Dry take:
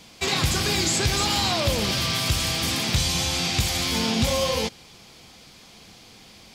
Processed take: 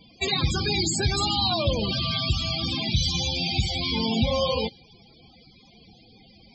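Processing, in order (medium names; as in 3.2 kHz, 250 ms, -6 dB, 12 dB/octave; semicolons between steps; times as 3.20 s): loudest bins only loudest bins 32; dynamic bell 3.8 kHz, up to +4 dB, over -44 dBFS, Q 0.93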